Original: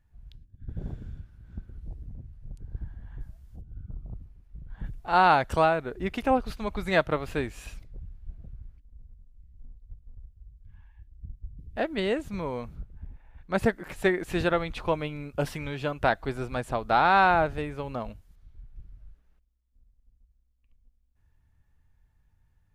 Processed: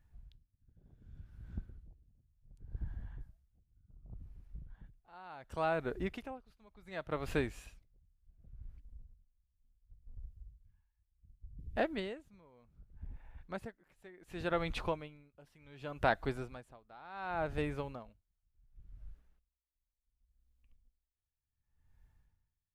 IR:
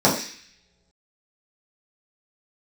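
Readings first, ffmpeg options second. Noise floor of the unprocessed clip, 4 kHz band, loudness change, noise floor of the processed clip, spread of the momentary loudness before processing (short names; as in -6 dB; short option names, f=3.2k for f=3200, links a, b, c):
-67 dBFS, -12.0 dB, -12.0 dB, under -85 dBFS, 23 LU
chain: -filter_complex "[0:a]asplit=2[a][b];[b]acompressor=threshold=-31dB:ratio=6,volume=0dB[c];[a][c]amix=inputs=2:normalize=0,aeval=exprs='val(0)*pow(10,-28*(0.5-0.5*cos(2*PI*0.68*n/s))/20)':c=same,volume=-7dB"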